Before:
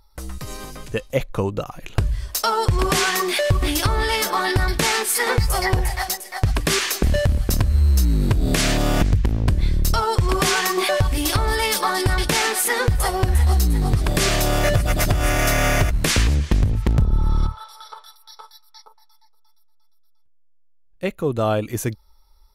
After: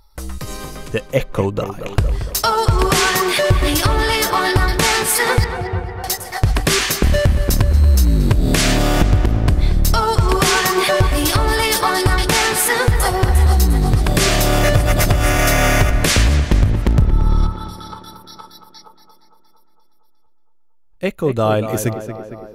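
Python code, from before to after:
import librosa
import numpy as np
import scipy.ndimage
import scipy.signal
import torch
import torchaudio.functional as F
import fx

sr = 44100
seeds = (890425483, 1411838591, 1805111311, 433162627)

p1 = fx.octave_resonator(x, sr, note='F', decay_s=0.11, at=(5.44, 6.04))
p2 = p1 + fx.echo_tape(p1, sr, ms=230, feedback_pct=71, wet_db=-8, lp_hz=2200.0, drive_db=8.0, wow_cents=16, dry=0)
y = p2 * 10.0 ** (4.0 / 20.0)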